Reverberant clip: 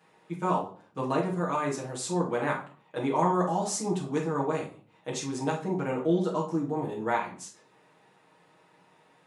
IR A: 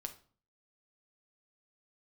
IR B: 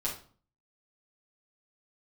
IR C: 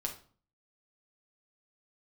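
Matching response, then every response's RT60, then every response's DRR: B; 0.45 s, 0.45 s, 0.45 s; 5.0 dB, -6.5 dB, 0.0 dB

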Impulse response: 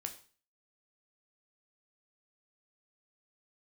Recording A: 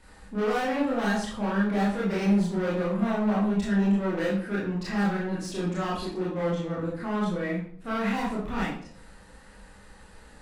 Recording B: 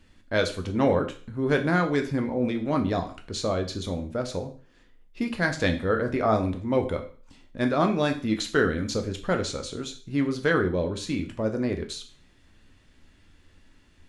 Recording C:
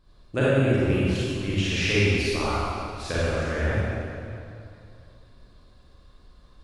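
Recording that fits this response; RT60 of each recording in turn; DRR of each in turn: B; 0.55 s, 0.40 s, 2.6 s; -7.0 dB, 4.5 dB, -10.0 dB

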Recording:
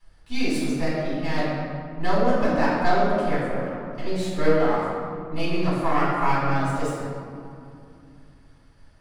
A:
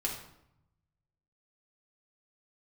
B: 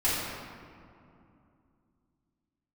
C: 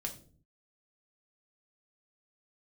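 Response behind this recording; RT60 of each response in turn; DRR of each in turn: B; 0.80 s, 2.6 s, 0.45 s; -2.5 dB, -10.5 dB, 2.0 dB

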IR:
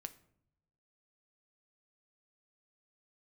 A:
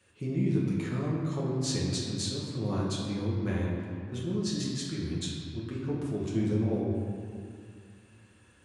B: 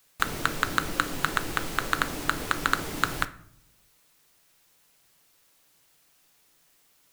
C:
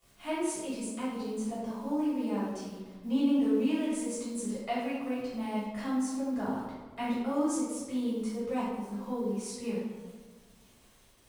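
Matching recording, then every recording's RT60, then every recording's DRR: B; 2.2 s, no single decay rate, 1.4 s; -5.5 dB, 9.5 dB, -10.0 dB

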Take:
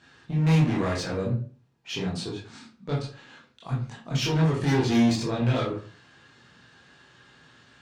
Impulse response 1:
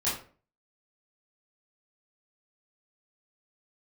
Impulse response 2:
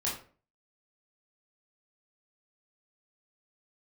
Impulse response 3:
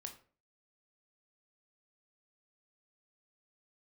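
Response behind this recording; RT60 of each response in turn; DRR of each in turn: 2; 0.40 s, 0.40 s, 0.40 s; -10.5 dB, -6.0 dB, 4.0 dB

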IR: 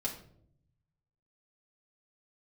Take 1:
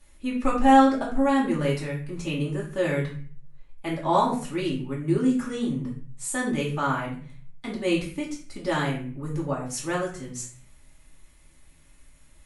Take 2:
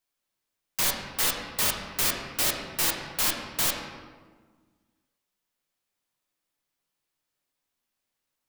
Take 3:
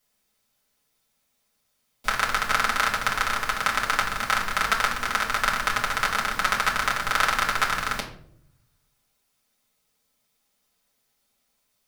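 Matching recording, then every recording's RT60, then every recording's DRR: 3; 0.40 s, 1.5 s, 0.65 s; -5.5 dB, 0.5 dB, -4.0 dB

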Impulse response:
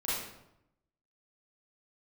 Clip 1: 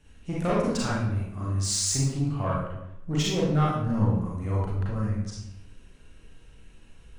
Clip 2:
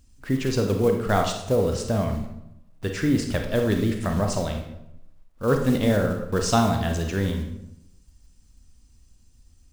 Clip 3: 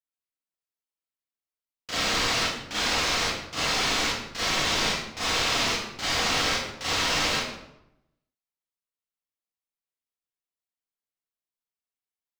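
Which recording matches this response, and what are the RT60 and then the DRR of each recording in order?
3; 0.85 s, 0.85 s, 0.85 s; -6.0 dB, 3.0 dB, -10.5 dB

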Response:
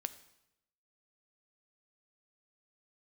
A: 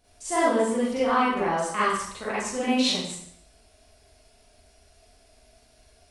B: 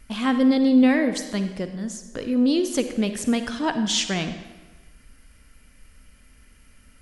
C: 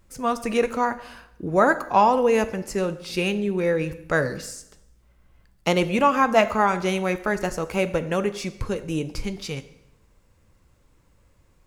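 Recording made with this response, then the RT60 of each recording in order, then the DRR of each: C; 0.65 s, 1.2 s, 0.85 s; -10.5 dB, 8.0 dB, 11.5 dB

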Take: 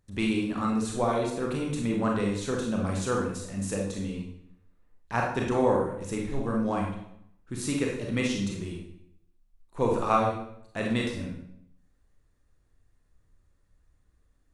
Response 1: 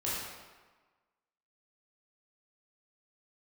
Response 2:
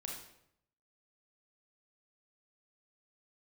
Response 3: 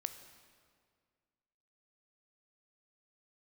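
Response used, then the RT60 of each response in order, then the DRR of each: 2; 1.3 s, 0.75 s, 2.0 s; -8.5 dB, -1.5 dB, 8.5 dB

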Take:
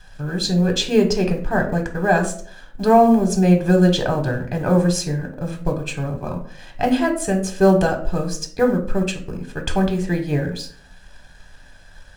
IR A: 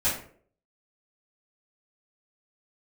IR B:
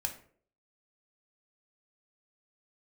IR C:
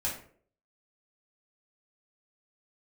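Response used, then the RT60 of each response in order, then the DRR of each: B; 0.55 s, 0.55 s, 0.55 s; -12.5 dB, 4.0 dB, -5.5 dB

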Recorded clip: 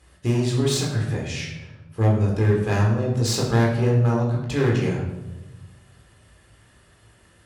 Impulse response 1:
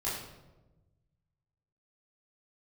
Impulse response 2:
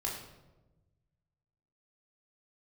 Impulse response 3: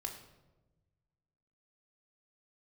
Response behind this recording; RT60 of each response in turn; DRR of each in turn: 2; 1.1 s, 1.1 s, 1.1 s; -9.5 dB, -3.0 dB, 3.0 dB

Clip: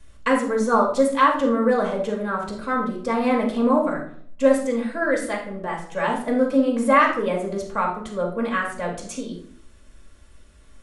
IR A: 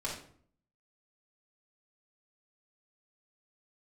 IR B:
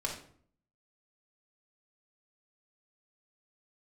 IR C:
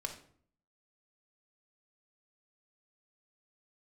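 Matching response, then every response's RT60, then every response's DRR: B; 0.55 s, 0.55 s, 0.55 s; -6.5 dB, -2.0 dB, 3.0 dB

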